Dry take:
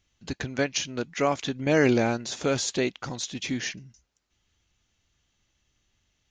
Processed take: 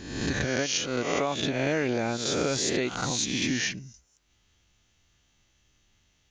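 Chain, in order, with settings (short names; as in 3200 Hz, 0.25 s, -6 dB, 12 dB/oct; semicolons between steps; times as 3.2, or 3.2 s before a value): spectral swells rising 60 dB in 0.91 s; compressor 6:1, threshold -26 dBFS, peak gain reduction 11 dB; gain +2.5 dB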